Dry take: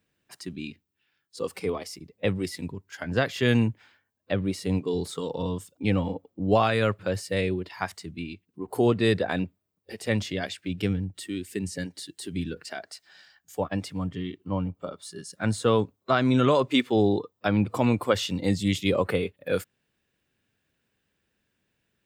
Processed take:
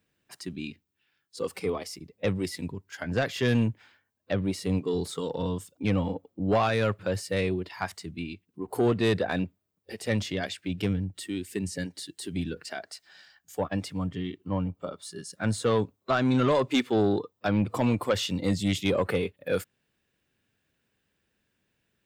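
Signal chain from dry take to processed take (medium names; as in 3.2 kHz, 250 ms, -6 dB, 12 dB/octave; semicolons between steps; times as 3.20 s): saturation -16 dBFS, distortion -16 dB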